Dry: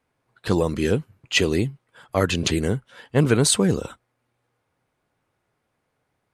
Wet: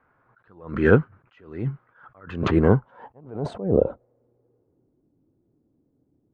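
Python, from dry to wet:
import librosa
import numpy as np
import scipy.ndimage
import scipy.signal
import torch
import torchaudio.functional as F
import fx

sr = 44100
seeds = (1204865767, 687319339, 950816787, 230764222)

y = fx.filter_sweep_lowpass(x, sr, from_hz=1400.0, to_hz=300.0, start_s=2.18, end_s=5.09, q=3.4)
y = fx.attack_slew(y, sr, db_per_s=110.0)
y = y * librosa.db_to_amplitude(6.0)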